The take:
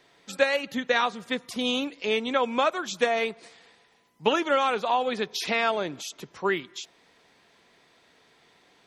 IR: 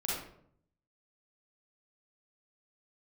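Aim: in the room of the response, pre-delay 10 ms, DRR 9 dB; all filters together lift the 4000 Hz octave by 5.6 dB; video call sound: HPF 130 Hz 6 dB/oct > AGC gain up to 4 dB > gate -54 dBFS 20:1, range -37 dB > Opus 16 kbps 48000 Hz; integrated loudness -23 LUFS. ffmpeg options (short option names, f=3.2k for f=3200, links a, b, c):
-filter_complex "[0:a]equalizer=f=4k:t=o:g=7,asplit=2[a][b];[1:a]atrim=start_sample=2205,adelay=10[c];[b][c]afir=irnorm=-1:irlink=0,volume=-13.5dB[d];[a][d]amix=inputs=2:normalize=0,highpass=f=130:p=1,dynaudnorm=m=4dB,agate=range=-37dB:threshold=-54dB:ratio=20,volume=2dB" -ar 48000 -c:a libopus -b:a 16k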